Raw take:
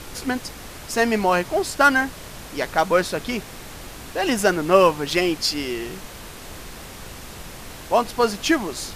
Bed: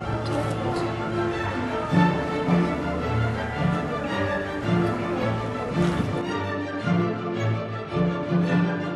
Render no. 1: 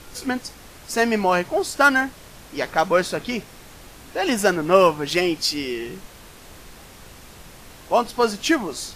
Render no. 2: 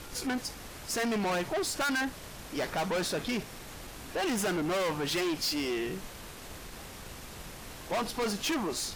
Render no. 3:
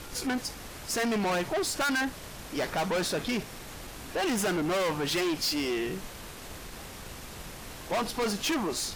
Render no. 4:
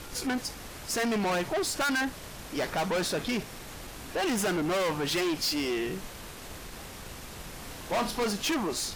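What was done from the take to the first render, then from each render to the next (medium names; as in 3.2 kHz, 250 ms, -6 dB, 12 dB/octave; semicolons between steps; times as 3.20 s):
noise print and reduce 6 dB
valve stage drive 28 dB, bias 0.3
trim +2 dB
7.50–8.23 s: flutter echo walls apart 5.7 m, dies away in 0.26 s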